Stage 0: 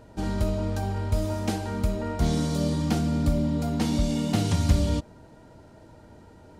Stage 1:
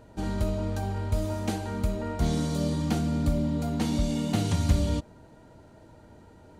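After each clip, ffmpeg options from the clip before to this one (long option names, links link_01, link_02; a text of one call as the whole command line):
ffmpeg -i in.wav -af "bandreject=frequency=5200:width=12,volume=-2dB" out.wav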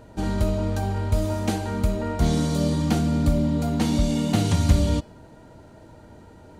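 ffmpeg -i in.wav -af "bandreject=frequency=423.3:width_type=h:width=4,bandreject=frequency=846.6:width_type=h:width=4,bandreject=frequency=1269.9:width_type=h:width=4,bandreject=frequency=1693.2:width_type=h:width=4,bandreject=frequency=2116.5:width_type=h:width=4,bandreject=frequency=2539.8:width_type=h:width=4,bandreject=frequency=2963.1:width_type=h:width=4,bandreject=frequency=3386.4:width_type=h:width=4,bandreject=frequency=3809.7:width_type=h:width=4,bandreject=frequency=4233:width_type=h:width=4,bandreject=frequency=4656.3:width_type=h:width=4,bandreject=frequency=5079.6:width_type=h:width=4,bandreject=frequency=5502.9:width_type=h:width=4,bandreject=frequency=5926.2:width_type=h:width=4,bandreject=frequency=6349.5:width_type=h:width=4,bandreject=frequency=6772.8:width_type=h:width=4,bandreject=frequency=7196.1:width_type=h:width=4,bandreject=frequency=7619.4:width_type=h:width=4,bandreject=frequency=8042.7:width_type=h:width=4,bandreject=frequency=8466:width_type=h:width=4,bandreject=frequency=8889.3:width_type=h:width=4,bandreject=frequency=9312.6:width_type=h:width=4,bandreject=frequency=9735.9:width_type=h:width=4,bandreject=frequency=10159.2:width_type=h:width=4,bandreject=frequency=10582.5:width_type=h:width=4,bandreject=frequency=11005.8:width_type=h:width=4,bandreject=frequency=11429.1:width_type=h:width=4,bandreject=frequency=11852.4:width_type=h:width=4,bandreject=frequency=12275.7:width_type=h:width=4,bandreject=frequency=12699:width_type=h:width=4,bandreject=frequency=13122.3:width_type=h:width=4,bandreject=frequency=13545.6:width_type=h:width=4,bandreject=frequency=13968.9:width_type=h:width=4,bandreject=frequency=14392.2:width_type=h:width=4,bandreject=frequency=14815.5:width_type=h:width=4,bandreject=frequency=15238.8:width_type=h:width=4,bandreject=frequency=15662.1:width_type=h:width=4,bandreject=frequency=16085.4:width_type=h:width=4,bandreject=frequency=16508.7:width_type=h:width=4,volume=5dB" out.wav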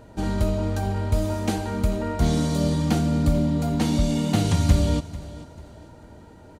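ffmpeg -i in.wav -af "aecho=1:1:443|886|1329:0.133|0.0467|0.0163" out.wav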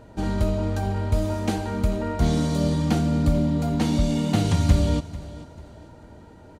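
ffmpeg -i in.wav -af "highshelf=frequency=7000:gain=-5" out.wav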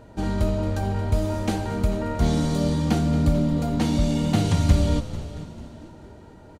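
ffmpeg -i in.wav -filter_complex "[0:a]asplit=7[link_01][link_02][link_03][link_04][link_05][link_06][link_07];[link_02]adelay=225,afreqshift=-77,volume=-15dB[link_08];[link_03]adelay=450,afreqshift=-154,volume=-19.3dB[link_09];[link_04]adelay=675,afreqshift=-231,volume=-23.6dB[link_10];[link_05]adelay=900,afreqshift=-308,volume=-27.9dB[link_11];[link_06]adelay=1125,afreqshift=-385,volume=-32.2dB[link_12];[link_07]adelay=1350,afreqshift=-462,volume=-36.5dB[link_13];[link_01][link_08][link_09][link_10][link_11][link_12][link_13]amix=inputs=7:normalize=0" out.wav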